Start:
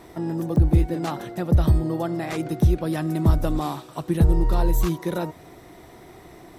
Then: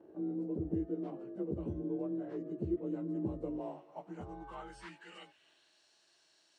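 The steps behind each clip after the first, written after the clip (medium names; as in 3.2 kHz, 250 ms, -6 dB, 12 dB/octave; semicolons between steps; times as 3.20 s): frequency axis rescaled in octaves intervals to 90%; dynamic bell 770 Hz, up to -4 dB, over -43 dBFS, Q 0.78; band-pass sweep 390 Hz -> 4.6 kHz, 3.40–5.84 s; trim -3.5 dB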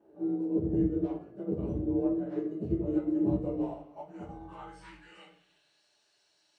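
simulated room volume 74 m³, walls mixed, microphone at 1.3 m; upward expansion 1.5:1, over -43 dBFS; trim +2 dB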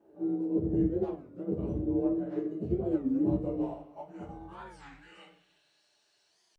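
warped record 33 1/3 rpm, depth 250 cents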